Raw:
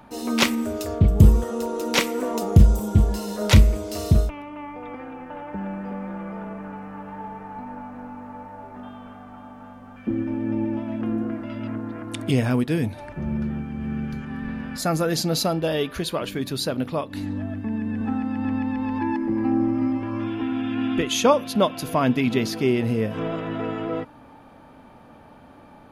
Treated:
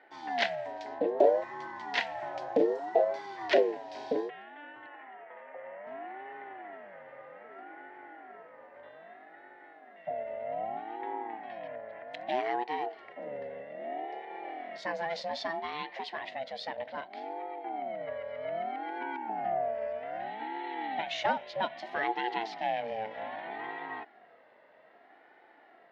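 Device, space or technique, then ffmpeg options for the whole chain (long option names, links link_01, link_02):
voice changer toy: -filter_complex "[0:a]aeval=exprs='val(0)*sin(2*PI*470*n/s+470*0.3/0.63*sin(2*PI*0.63*n/s))':channel_layout=same,highpass=420,equalizer=frequency=700:width_type=q:width=4:gain=6,equalizer=frequency=1200:width_type=q:width=4:gain=-9,equalizer=frequency=1900:width_type=q:width=4:gain=10,lowpass=frequency=4400:width=0.5412,lowpass=frequency=4400:width=1.3066,asettb=1/sr,asplit=3[link_01][link_02][link_03];[link_01]atrim=end=4.864[link_04];[link_02]atrim=start=4.86:end=5.87,asetpts=PTS-STARTPTS,afade=type=in:duration=0.004:curve=qsin,afade=type=out:start_time=1.006:duration=0.004:curve=qsin,acrossover=split=260 3000:gain=0.0891 1 0.178[link_05][link_06][link_07];[link_05][link_06][link_07]amix=inputs=3:normalize=0[link_08];[link_03]atrim=start=5.866[link_09];[link_04][link_08]acrossfade=duration=0.004:curve1=hsin:curve2=qsin[link_10];[link_10][link_09]acrossfade=duration=0.004:curve1=qsin:curve2=hsin,volume=-8dB"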